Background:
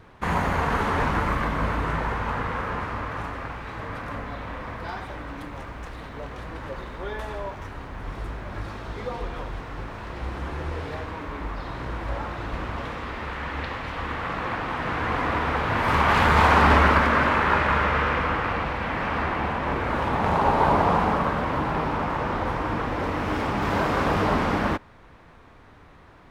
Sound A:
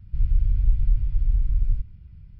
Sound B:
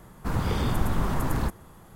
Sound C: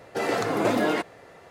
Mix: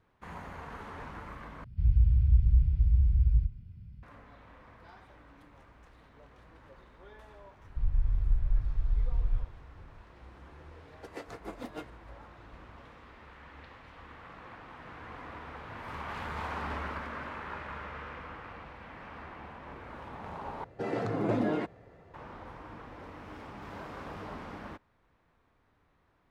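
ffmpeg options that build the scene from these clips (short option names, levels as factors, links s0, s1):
-filter_complex "[1:a]asplit=2[s0][s1];[3:a]asplit=2[s2][s3];[0:a]volume=0.1[s4];[s0]afreqshift=25[s5];[s1]aecho=1:1:1.2:0.84[s6];[s2]aeval=exprs='val(0)*pow(10,-21*(0.5-0.5*cos(2*PI*6.6*n/s))/20)':c=same[s7];[s3]aemphasis=mode=reproduction:type=riaa[s8];[s4]asplit=3[s9][s10][s11];[s9]atrim=end=1.644[s12];[s5]atrim=end=2.39,asetpts=PTS-STARTPTS,volume=0.631[s13];[s10]atrim=start=4.026:end=20.644[s14];[s8]atrim=end=1.5,asetpts=PTS-STARTPTS,volume=0.316[s15];[s11]atrim=start=22.136[s16];[s6]atrim=end=2.39,asetpts=PTS-STARTPTS,volume=0.237,afade=t=in:d=0.004:c=hsin,afade=t=out:st=2.386:d=0.004:c=hsin,adelay=7630[s17];[s7]atrim=end=1.5,asetpts=PTS-STARTPTS,volume=0.2,afade=t=in:d=0.004:c=hsin,afade=t=out:st=1.496:d=0.004:c=hsin,adelay=10880[s18];[s12][s13]acrossfade=d=0.004:c1=hsin:c2=hsin[s19];[s19][s14]acrossfade=d=0.004:c1=hsin:c2=hsin[s20];[s20][s15]acrossfade=d=0.004:c1=hsin:c2=hsin[s21];[s21][s16]acrossfade=d=0.004:c1=hsin:c2=hsin[s22];[s22][s17][s18]amix=inputs=3:normalize=0"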